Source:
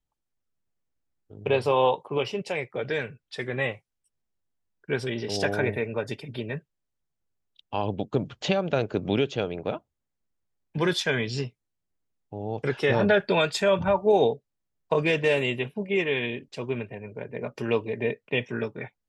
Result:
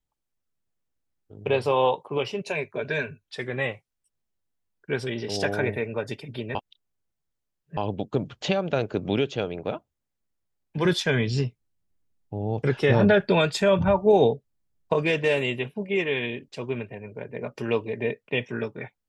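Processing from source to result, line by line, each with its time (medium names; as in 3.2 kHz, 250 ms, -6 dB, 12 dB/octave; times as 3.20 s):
2.43–3.24 s: rippled EQ curve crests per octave 1.5, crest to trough 11 dB
6.55–7.77 s: reverse
10.85–14.93 s: bass shelf 260 Hz +8.5 dB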